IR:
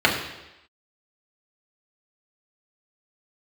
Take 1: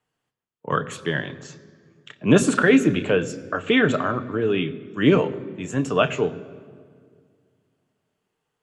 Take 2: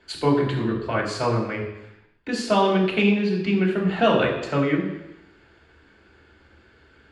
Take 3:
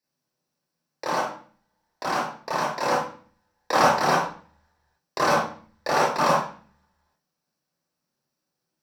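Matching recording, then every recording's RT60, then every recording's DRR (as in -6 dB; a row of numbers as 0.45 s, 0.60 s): 2; 2.0 s, 0.95 s, 0.45 s; 9.5 dB, -3.0 dB, -7.0 dB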